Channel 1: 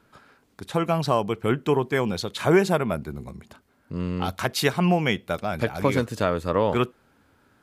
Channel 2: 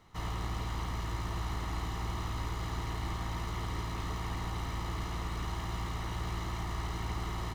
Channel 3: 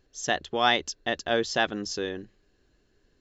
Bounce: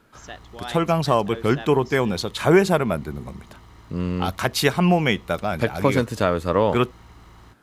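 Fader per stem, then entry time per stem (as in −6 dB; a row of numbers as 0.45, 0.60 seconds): +3.0, −11.5, −12.5 decibels; 0.00, 0.00, 0.00 seconds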